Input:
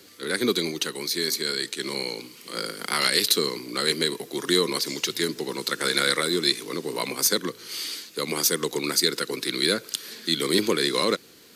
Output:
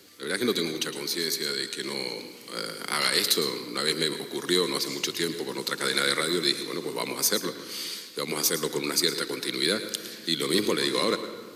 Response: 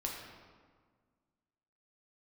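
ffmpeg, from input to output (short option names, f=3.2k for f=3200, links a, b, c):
-filter_complex "[0:a]asplit=2[a][b];[1:a]atrim=start_sample=2205,adelay=109[c];[b][c]afir=irnorm=-1:irlink=0,volume=-11dB[d];[a][d]amix=inputs=2:normalize=0,volume=-2.5dB"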